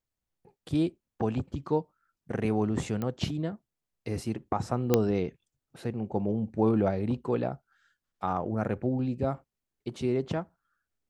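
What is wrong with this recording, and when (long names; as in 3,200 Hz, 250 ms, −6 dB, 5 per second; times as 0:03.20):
0:03.02: click −20 dBFS
0:04.94: click −8 dBFS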